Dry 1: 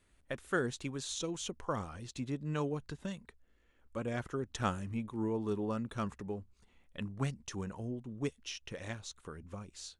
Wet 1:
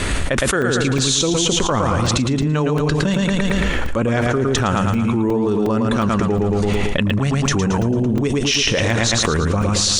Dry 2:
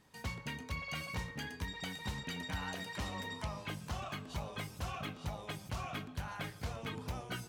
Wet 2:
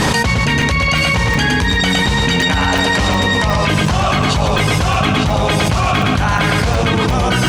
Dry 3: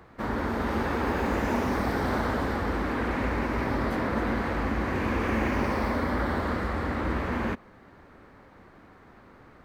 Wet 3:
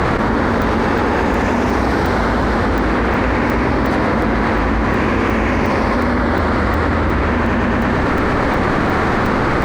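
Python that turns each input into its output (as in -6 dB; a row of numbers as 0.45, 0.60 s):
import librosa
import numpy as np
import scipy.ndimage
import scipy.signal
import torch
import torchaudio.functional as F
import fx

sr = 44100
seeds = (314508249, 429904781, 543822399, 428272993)

p1 = scipy.signal.sosfilt(scipy.signal.butter(2, 8500.0, 'lowpass', fs=sr, output='sos'), x)
p2 = p1 + fx.echo_feedback(p1, sr, ms=112, feedback_pct=45, wet_db=-6, dry=0)
p3 = fx.buffer_crackle(p2, sr, first_s=0.62, period_s=0.36, block=128, kind='zero')
p4 = fx.env_flatten(p3, sr, amount_pct=100)
y = librosa.util.normalize(p4) * 10.0 ** (-2 / 20.0)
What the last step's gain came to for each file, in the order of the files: +10.5, +20.5, +7.5 dB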